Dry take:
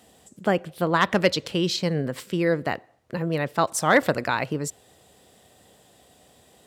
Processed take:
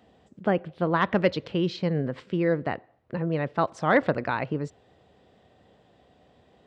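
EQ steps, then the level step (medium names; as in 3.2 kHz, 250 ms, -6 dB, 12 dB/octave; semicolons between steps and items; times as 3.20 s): tape spacing loss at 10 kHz 43 dB; treble shelf 2.3 kHz +8.5 dB; 0.0 dB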